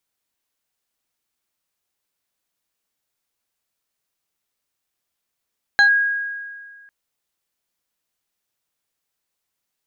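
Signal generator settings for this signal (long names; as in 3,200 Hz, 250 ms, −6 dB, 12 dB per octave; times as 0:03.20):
two-operator FM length 1.10 s, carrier 1,640 Hz, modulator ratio 1.49, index 0.57, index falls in 0.10 s linear, decay 1.79 s, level −8.5 dB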